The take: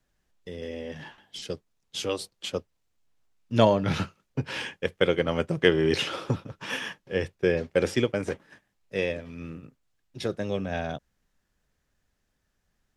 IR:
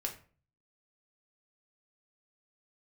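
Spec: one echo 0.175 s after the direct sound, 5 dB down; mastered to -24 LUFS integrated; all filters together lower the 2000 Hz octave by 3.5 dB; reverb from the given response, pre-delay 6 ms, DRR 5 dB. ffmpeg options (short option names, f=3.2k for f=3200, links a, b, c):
-filter_complex "[0:a]equalizer=f=2k:t=o:g=-4.5,aecho=1:1:175:0.562,asplit=2[a][b];[1:a]atrim=start_sample=2205,adelay=6[c];[b][c]afir=irnorm=-1:irlink=0,volume=-6dB[d];[a][d]amix=inputs=2:normalize=0,volume=2.5dB"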